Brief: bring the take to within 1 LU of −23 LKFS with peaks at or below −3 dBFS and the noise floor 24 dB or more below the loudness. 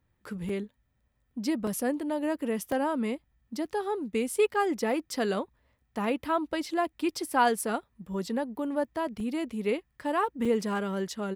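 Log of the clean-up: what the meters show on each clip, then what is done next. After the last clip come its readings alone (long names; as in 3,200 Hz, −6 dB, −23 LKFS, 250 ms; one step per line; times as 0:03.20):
number of dropouts 6; longest dropout 3.0 ms; integrated loudness −30.5 LKFS; sample peak −12.5 dBFS; target loudness −23.0 LKFS
→ repair the gap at 0:00.49/0:01.67/0:02.72/0:06.24/0:09.20/0:10.45, 3 ms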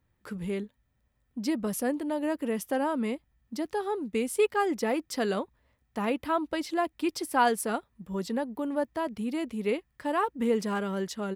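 number of dropouts 0; integrated loudness −30.5 LKFS; sample peak −12.5 dBFS; target loudness −23.0 LKFS
→ level +7.5 dB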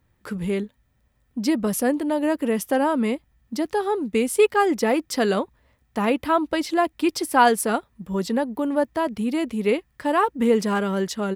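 integrated loudness −23.0 LKFS; sample peak −5.0 dBFS; background noise floor −66 dBFS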